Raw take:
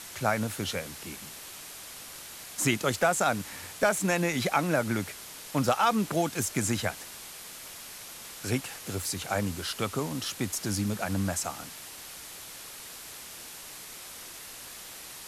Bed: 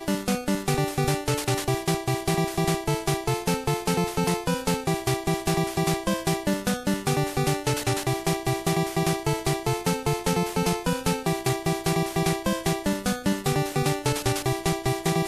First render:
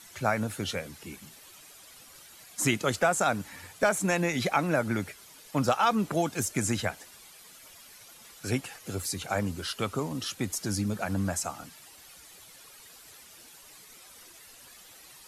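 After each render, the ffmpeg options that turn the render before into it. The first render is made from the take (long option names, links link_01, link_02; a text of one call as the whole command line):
ffmpeg -i in.wav -af "afftdn=noise_reduction=11:noise_floor=-44" out.wav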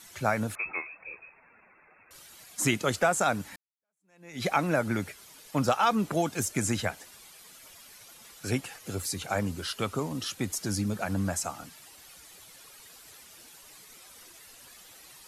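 ffmpeg -i in.wav -filter_complex "[0:a]asettb=1/sr,asplit=3[link_01][link_02][link_03];[link_01]atrim=end=0.554[link_04];[link_02]atrim=start=0.55:end=2.11,asetpts=PTS-STARTPTS,afade=type=in:duration=0.004:curve=qsin,afade=type=out:start_time=1.556:duration=0.004:curve=qsin,lowpass=frequency=2300:width_type=q:width=0.5098,lowpass=frequency=2300:width_type=q:width=0.6013,lowpass=frequency=2300:width_type=q:width=0.9,lowpass=frequency=2300:width_type=q:width=2.563,afreqshift=-2700[link_05];[link_03]atrim=start=2.106[link_06];[link_04][link_05]acrossfade=duration=0.004:curve1=hsin:curve2=qsin[link_07];[link_07][link_06]acrossfade=duration=0.004:curve1=qsin:curve2=hsin,asplit=2[link_08][link_09];[link_08]atrim=end=3.56,asetpts=PTS-STARTPTS,afade=type=out:start_time=3.556:duration=0.004:curve=hsin[link_10];[link_09]atrim=start=3.56,asetpts=PTS-STARTPTS,afade=type=in:duration=0.89:curve=exp[link_11];[link_10][link_11]concat=n=2:v=0:a=1" out.wav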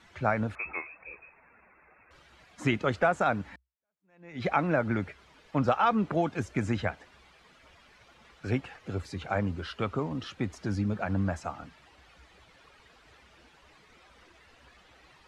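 ffmpeg -i in.wav -af "lowpass=2500,equalizer=frequency=64:width=3.4:gain=14" out.wav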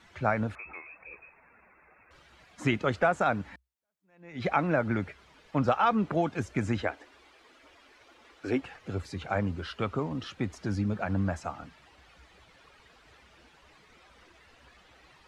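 ffmpeg -i in.wav -filter_complex "[0:a]asettb=1/sr,asplit=3[link_01][link_02][link_03];[link_01]atrim=end=0.544[link_04];[link_02]atrim=start=0.54:end=1.12,asetpts=PTS-STARTPTS,afade=type=in:duration=0.004:curve=qsin,afade=type=out:start_time=0.576:duration=0.004:curve=qsin,acompressor=threshold=-43dB:ratio=2.5:attack=3.2:release=140:knee=1:detection=peak[link_05];[link_03]atrim=start=1.116[link_06];[link_04][link_05]acrossfade=duration=0.004:curve1=hsin:curve2=qsin[link_07];[link_07][link_06]acrossfade=duration=0.004:curve1=qsin:curve2=hsin,asettb=1/sr,asplit=3[link_08][link_09][link_10];[link_08]atrim=end=6.824[link_11];[link_09]atrim=start=6.82:end=8.62,asetpts=PTS-STARTPTS,afade=type=in:duration=0.004:curve=qsin,afade=type=out:start_time=1.796:duration=0.004:curve=qsin,lowshelf=frequency=230:width_type=q:width=3:gain=-7.5[link_12];[link_10]atrim=start=8.616[link_13];[link_11][link_12]acrossfade=duration=0.004:curve1=hsin:curve2=qsin[link_14];[link_14][link_13]acrossfade=duration=0.004:curve1=qsin:curve2=hsin" out.wav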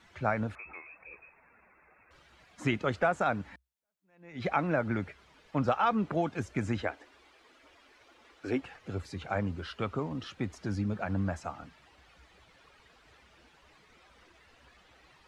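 ffmpeg -i in.wav -af "volume=-2.5dB" out.wav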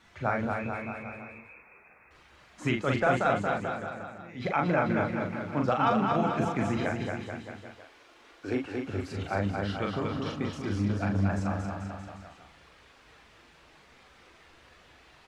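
ffmpeg -i in.wav -filter_complex "[0:a]asplit=2[link_01][link_02];[link_02]adelay=40,volume=-3.5dB[link_03];[link_01][link_03]amix=inputs=2:normalize=0,asplit=2[link_04][link_05];[link_05]aecho=0:1:230|437|623.3|791|941.9:0.631|0.398|0.251|0.158|0.1[link_06];[link_04][link_06]amix=inputs=2:normalize=0" out.wav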